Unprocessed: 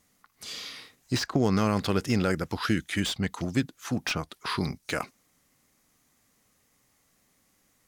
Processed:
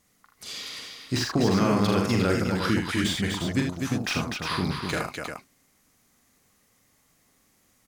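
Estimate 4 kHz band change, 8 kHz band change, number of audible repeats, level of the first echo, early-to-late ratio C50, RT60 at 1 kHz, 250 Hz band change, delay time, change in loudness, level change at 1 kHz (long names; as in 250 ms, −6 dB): +3.0 dB, +3.0 dB, 4, −5.0 dB, no reverb audible, no reverb audible, +3.0 dB, 43 ms, +3.0 dB, +3.0 dB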